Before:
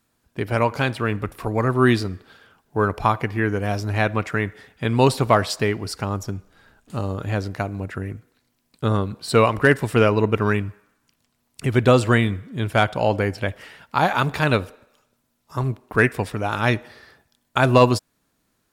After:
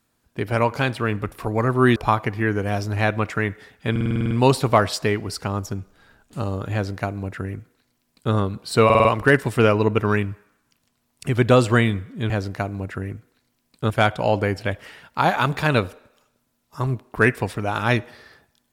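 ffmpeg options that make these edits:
-filter_complex "[0:a]asplit=16[a][b][c][d][e][f][g][h][i][j][k][l][m][n][o][p];[a]atrim=end=1.962[q];[b]atrim=start=2.928:end=4.932[r];[c]atrim=start=4.878:end=4.932[s];[d]atrim=start=4.878:end=4.932[t];[e]atrim=start=4.878:end=4.932[u];[f]atrim=start=4.878:end=4.932[v];[g]atrim=start=4.878:end=4.932[w];[h]atrim=start=4.878:end=4.932[x];[i]atrim=start=4.878:end=4.932[y];[j]atrim=start=4.878:end=9.472[z];[k]atrim=start=9.418:end=9.472[aa];[l]atrim=start=9.418:end=9.472[ab];[m]atrim=start=9.418:end=9.472[ac];[n]atrim=start=9.418:end=12.672[ad];[o]atrim=start=7.298:end=8.902[ae];[p]atrim=start=12.668[af];[q][r]acrossfade=d=0.004:c1=hsin:c2=hsin[ag];[ag][s]acrossfade=d=0.004:c1=hsin:c2=hsin[ah];[ah][t]acrossfade=d=0.004:c1=hsin:c2=hsin[ai];[ai][u]acrossfade=d=0.004:c1=hsin:c2=hsin[aj];[aj][v]acrossfade=d=0.004:c1=hsin:c2=hsin[ak];[ak][w]acrossfade=d=0.004:c1=hsin:c2=hsin[al];[al][x]acrossfade=d=0.004:c1=hsin:c2=hsin[am];[am][y]acrossfade=d=0.004:c1=hsin:c2=hsin[an];[an][z]acrossfade=d=0.004:c1=hsin:c2=hsin[ao];[ao][aa]acrossfade=d=0.004:c1=hsin:c2=hsin[ap];[ap][ab]acrossfade=d=0.004:c1=hsin:c2=hsin[aq];[aq][ac]acrossfade=d=0.004:c1=hsin:c2=hsin[ar];[ar][ad]acrossfade=d=0.004:c1=hsin:c2=hsin[as];[as][ae]acrossfade=d=0.004:c1=hsin:c2=hsin[at];[at][af]acrossfade=d=0.004:c1=hsin:c2=hsin"

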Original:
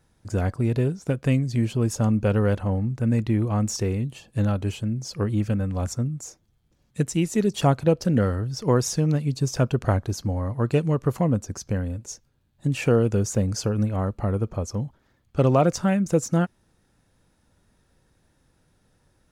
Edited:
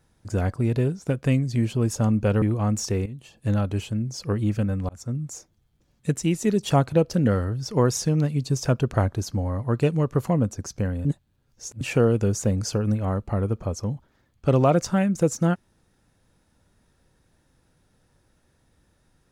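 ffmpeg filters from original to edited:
-filter_complex "[0:a]asplit=6[a][b][c][d][e][f];[a]atrim=end=2.422[g];[b]atrim=start=3.328:end=3.97,asetpts=PTS-STARTPTS,afade=t=out:st=0.638:d=0.004:c=hsin:silence=0.223872[h];[c]atrim=start=3.97:end=5.8,asetpts=PTS-STARTPTS,afade=t=in:d=0.47:silence=0.223872,afade=t=out:st=1.826:d=0.004:c=hsin[i];[d]atrim=start=5.8:end=11.962,asetpts=PTS-STARTPTS,afade=t=in:d=0.32[j];[e]atrim=start=11.958:end=12.722,asetpts=PTS-STARTPTS,areverse[k];[f]atrim=start=12.718[l];[h][i][j]concat=n=3:v=0:a=1[m];[g][m]acrossfade=d=0.004:c1=hsin:c2=hsin[n];[n][k]acrossfade=d=0.004:c1=hsin:c2=hsin[o];[o][l]acrossfade=d=0.004:c1=hsin:c2=hsin"

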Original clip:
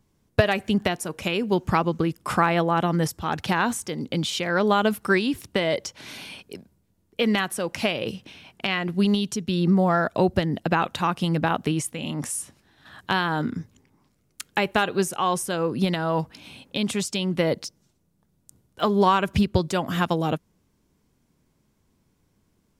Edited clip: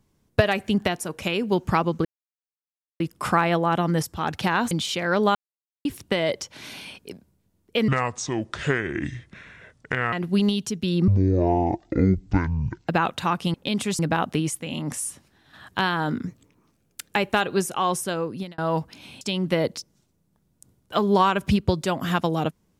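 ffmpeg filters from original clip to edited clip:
-filter_complex "[0:a]asplit=15[a][b][c][d][e][f][g][h][i][j][k][l][m][n][o];[a]atrim=end=2.05,asetpts=PTS-STARTPTS,afade=t=out:st=2.046:d=0.004:c=hsin,apad=pad_dur=0.95[p];[b]atrim=start=2.05:end=3.762,asetpts=PTS-STARTPTS,afade=t=in:d=0.004:c=hsin[q];[c]atrim=start=4.148:end=4.79,asetpts=PTS-STARTPTS,afade=t=out:st=0.638:d=0.004:c=hsin[r];[d]atrim=start=4.79:end=5.29,asetpts=PTS-STARTPTS,volume=0[s];[e]atrim=start=5.29:end=7.324,asetpts=PTS-STARTPTS,afade=t=in:d=0.004:c=hsin[t];[f]atrim=start=7.32:end=8.78,asetpts=PTS-STARTPTS,asetrate=28665,aresample=44100,atrim=end_sample=99055,asetpts=PTS-STARTPTS[u];[g]atrim=start=8.776:end=9.734[v];[h]atrim=start=9.73:end=10.65,asetpts=PTS-STARTPTS,asetrate=22491,aresample=44100[w];[i]atrim=start=10.646:end=11.312[x];[j]atrim=start=16.628:end=17.082[y];[k]atrim=start=11.308:end=13.594[z];[l]atrim=start=13.59:end=14.51,asetpts=PTS-STARTPTS,asetrate=49392,aresample=44100[aa];[m]atrim=start=14.506:end=16,asetpts=PTS-STARTPTS,afade=t=out:st=1.004:d=0.49[ab];[n]atrim=start=16:end=16.632,asetpts=PTS-STARTPTS,afade=t=in:d=0.004:c=hsin[ac];[o]atrim=start=17.078[ad];[p][q]concat=n=2:v=0:a=1[ae];[r][s][t]concat=n=3:v=0:a=1[af];[ae][af]acrossfade=d=0.004:c1=hsin:c2=hsin[ag];[ag][u]acrossfade=d=0.004:c1=hsin:c2=hsin[ah];[ah][v]acrossfade=d=0.004:c1=hsin:c2=hsin[ai];[ai][w]acrossfade=d=0.004:c1=hsin:c2=hsin[aj];[aj][x]acrossfade=d=0.004:c1=hsin:c2=hsin[ak];[ak][y]acrossfade=d=0.004:c1=hsin:c2=hsin[al];[al][z]acrossfade=d=0.004:c1=hsin:c2=hsin[am];[am][aa]acrossfade=d=0.004:c1=hsin:c2=hsin[an];[ab][ac]concat=n=2:v=0:a=1[ao];[an][ao]acrossfade=d=0.004:c1=hsin:c2=hsin[ap];[ap][ad]acrossfade=d=0.004:c1=hsin:c2=hsin"

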